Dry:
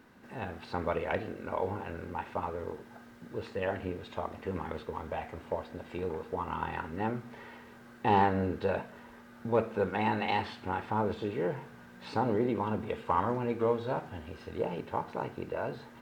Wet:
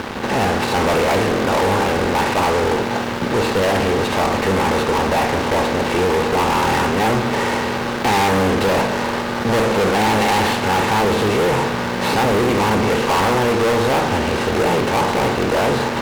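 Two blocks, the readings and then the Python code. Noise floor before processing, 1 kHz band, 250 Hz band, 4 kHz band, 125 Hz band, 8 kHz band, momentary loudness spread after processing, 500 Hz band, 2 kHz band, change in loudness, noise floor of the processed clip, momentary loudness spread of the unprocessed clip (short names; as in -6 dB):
-53 dBFS, +16.0 dB, +16.5 dB, +25.0 dB, +16.0 dB, n/a, 3 LU, +16.0 dB, +20.5 dB, +16.5 dB, -23 dBFS, 14 LU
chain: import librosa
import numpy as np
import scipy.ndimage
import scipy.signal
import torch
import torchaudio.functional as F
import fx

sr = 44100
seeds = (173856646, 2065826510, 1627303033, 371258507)

y = fx.bin_compress(x, sr, power=0.6)
y = fx.fuzz(y, sr, gain_db=37.0, gate_db=-44.0)
y = y * 10.0 ** (-1.0 / 20.0)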